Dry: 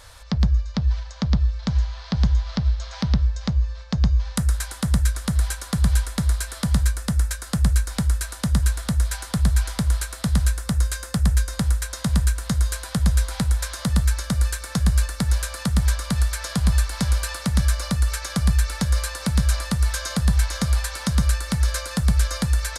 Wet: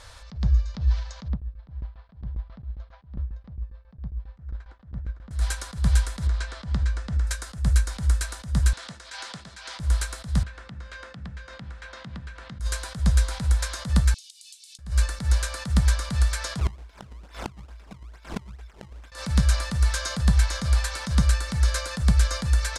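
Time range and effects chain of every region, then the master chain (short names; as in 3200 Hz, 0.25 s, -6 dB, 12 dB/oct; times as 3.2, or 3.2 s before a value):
1.28–5.31 tape spacing loss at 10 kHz 43 dB + dB-ramp tremolo decaying 7.4 Hz, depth 20 dB
6.27–7.27 air absorption 120 m + compressor 5:1, threshold -19 dBFS
8.73–9.8 high shelf 2200 Hz +7.5 dB + compressor 4:1, threshold -25 dBFS + BPF 270–4700 Hz
10.43–12.6 Chebyshev band-pass 120–2700 Hz + compressor 4:1, threshold -35 dBFS + notches 50/100/150/200/250/300/350 Hz
14.14–14.79 steep high-pass 2800 Hz 48 dB/oct + compressor 8:1, threshold -41 dBFS
16.59–19.12 ripple EQ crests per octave 1.7, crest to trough 13 dB + decimation with a swept rate 25×, swing 160% 2.3 Hz + flipped gate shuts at -14 dBFS, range -26 dB
whole clip: LPF 8600 Hz 12 dB/oct; attack slew limiter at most 170 dB/s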